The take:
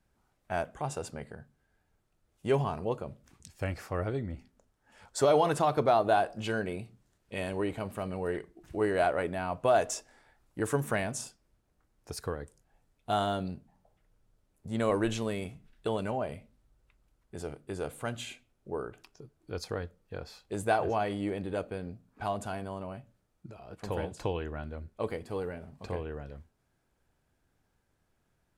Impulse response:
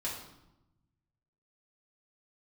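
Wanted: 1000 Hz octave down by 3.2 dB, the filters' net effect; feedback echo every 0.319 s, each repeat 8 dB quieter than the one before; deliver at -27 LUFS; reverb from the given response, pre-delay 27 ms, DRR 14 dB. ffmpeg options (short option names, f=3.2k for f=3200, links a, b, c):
-filter_complex "[0:a]equalizer=f=1k:t=o:g=-5,aecho=1:1:319|638|957|1276|1595:0.398|0.159|0.0637|0.0255|0.0102,asplit=2[a][b];[1:a]atrim=start_sample=2205,adelay=27[c];[b][c]afir=irnorm=-1:irlink=0,volume=-17dB[d];[a][d]amix=inputs=2:normalize=0,volume=7dB"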